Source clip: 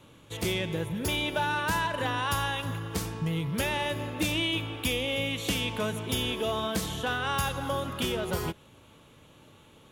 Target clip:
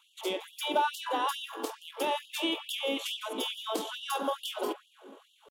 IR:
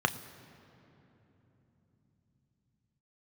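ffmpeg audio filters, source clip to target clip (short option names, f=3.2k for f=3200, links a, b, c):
-filter_complex "[0:a]atempo=1.8,asplit=2[a][b];[1:a]atrim=start_sample=2205,lowpass=2.4k[c];[b][c]afir=irnorm=-1:irlink=0,volume=-7dB[d];[a][d]amix=inputs=2:normalize=0,afftfilt=real='re*gte(b*sr/1024,210*pow(2800/210,0.5+0.5*sin(2*PI*2.3*pts/sr)))':imag='im*gte(b*sr/1024,210*pow(2800/210,0.5+0.5*sin(2*PI*2.3*pts/sr)))':win_size=1024:overlap=0.75,volume=-4dB"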